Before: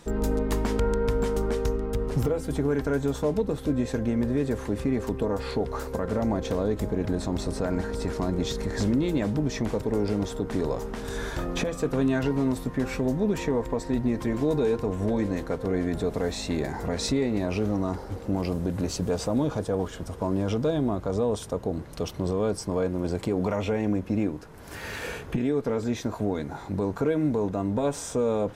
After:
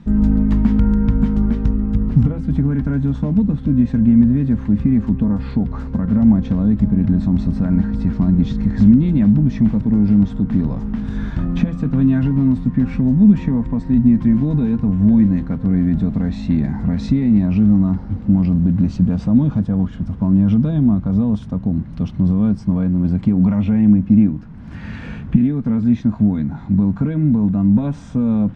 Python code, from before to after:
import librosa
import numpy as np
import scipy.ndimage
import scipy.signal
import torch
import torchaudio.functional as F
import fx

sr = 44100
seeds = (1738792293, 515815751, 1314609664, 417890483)

y = scipy.signal.sosfilt(scipy.signal.butter(2, 3100.0, 'lowpass', fs=sr, output='sos'), x)
y = fx.low_shelf_res(y, sr, hz=300.0, db=11.5, q=3.0)
y = F.gain(torch.from_numpy(y), -1.0).numpy()